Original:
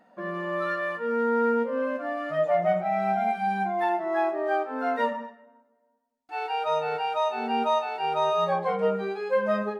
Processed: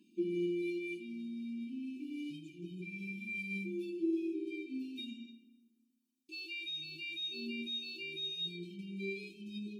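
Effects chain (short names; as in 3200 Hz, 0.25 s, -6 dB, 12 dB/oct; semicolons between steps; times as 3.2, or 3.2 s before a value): HPF 170 Hz; in parallel at -2 dB: compressor, threshold -35 dBFS, peak gain reduction 15 dB; on the sum: limiter -22 dBFS, peak gain reduction 9.5 dB; brick-wall FIR band-stop 390–2300 Hz; resonator 340 Hz, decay 0.15 s, harmonics odd, mix 90%; on a send at -13.5 dB: reverb RT60 1.2 s, pre-delay 3 ms; on the sum: gain +10.5 dB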